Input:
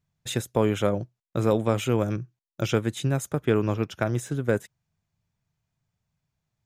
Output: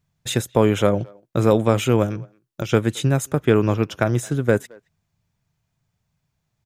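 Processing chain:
0:02.05–0:02.73: downward compressor 6 to 1, threshold −29 dBFS, peak gain reduction 9 dB
far-end echo of a speakerphone 220 ms, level −25 dB
level +6 dB

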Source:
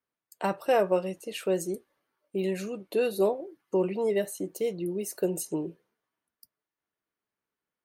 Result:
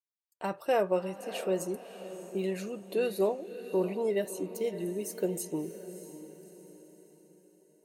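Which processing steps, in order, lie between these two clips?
noise gate −52 dBFS, range −15 dB
automatic gain control gain up to 5.5 dB
feedback delay with all-pass diffusion 621 ms, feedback 44%, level −12 dB
level −8.5 dB

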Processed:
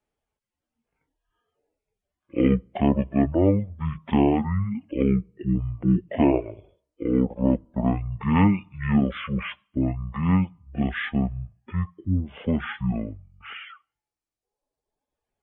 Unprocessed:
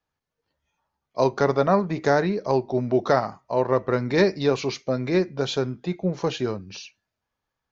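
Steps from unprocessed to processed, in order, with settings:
reverb reduction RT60 0.77 s
wrong playback speed 15 ips tape played at 7.5 ips

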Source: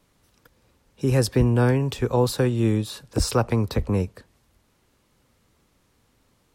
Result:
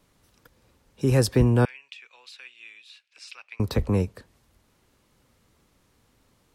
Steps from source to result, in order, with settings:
0:01.65–0:03.60: four-pole ladder band-pass 2,700 Hz, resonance 65%

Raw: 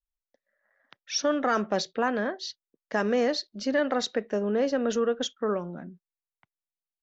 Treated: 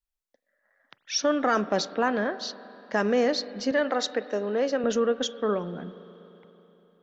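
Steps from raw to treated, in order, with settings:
0:03.71–0:04.84: Bessel high-pass filter 320 Hz
spring reverb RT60 3.7 s, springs 40/48 ms, chirp 65 ms, DRR 15 dB
level +1.5 dB

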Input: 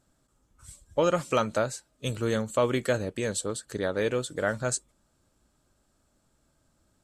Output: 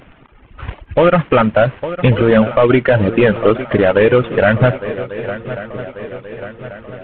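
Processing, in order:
variable-slope delta modulation 16 kbit/s
reverb reduction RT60 1.9 s
downward compressor 3 to 1, threshold −29 dBFS, peak gain reduction 6.5 dB
on a send: feedback echo with a long and a short gap by turns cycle 1,139 ms, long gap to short 3 to 1, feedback 51%, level −18 dB
on the sum: boost into a limiter +27.5 dB
level −1 dB

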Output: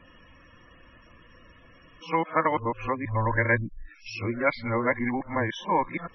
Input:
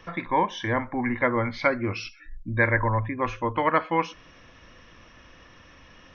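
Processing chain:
played backwards from end to start
spectral peaks only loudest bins 64
level −1.5 dB

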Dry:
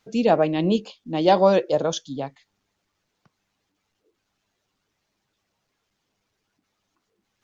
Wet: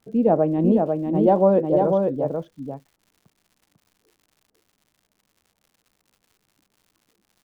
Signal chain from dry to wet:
Bessel low-pass filter 570 Hz, order 2
surface crackle 99 per second −49 dBFS
single-tap delay 496 ms −4 dB
level +3 dB

